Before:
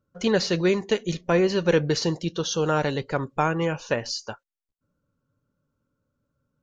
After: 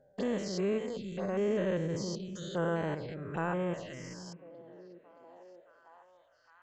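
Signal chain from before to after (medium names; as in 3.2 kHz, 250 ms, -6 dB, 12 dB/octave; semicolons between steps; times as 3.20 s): spectrogram pixelated in time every 200 ms; touch-sensitive phaser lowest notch 170 Hz, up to 4.4 kHz, full sweep at -23 dBFS; repeats whose band climbs or falls 621 ms, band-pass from 180 Hz, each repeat 0.7 oct, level -11.5 dB; pitch shift +1.5 st; trim -6.5 dB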